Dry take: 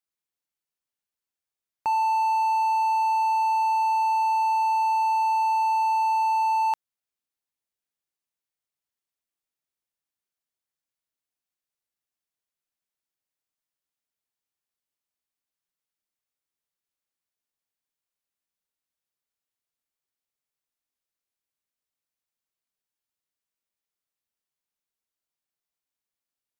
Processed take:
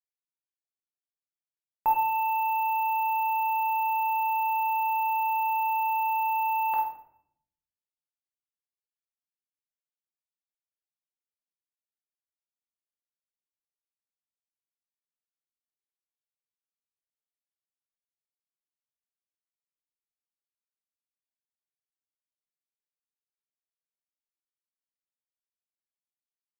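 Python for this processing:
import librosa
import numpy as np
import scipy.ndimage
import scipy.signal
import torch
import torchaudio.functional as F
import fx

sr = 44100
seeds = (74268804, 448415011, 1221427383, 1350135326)

p1 = fx.law_mismatch(x, sr, coded='A')
p2 = scipy.signal.sosfilt(scipy.signal.butter(2, 1900.0, 'lowpass', fs=sr, output='sos'), p1)
p3 = fx.doubler(p2, sr, ms=24.0, db=-12.5)
p4 = p3 + fx.echo_multitap(p3, sr, ms=(49, 64, 73), db=(-9.0, -12.5, -17.5), dry=0)
p5 = fx.room_shoebox(p4, sr, seeds[0], volume_m3=140.0, walls='mixed', distance_m=0.84)
y = np.repeat(scipy.signal.resample_poly(p5, 1, 3), 3)[:len(p5)]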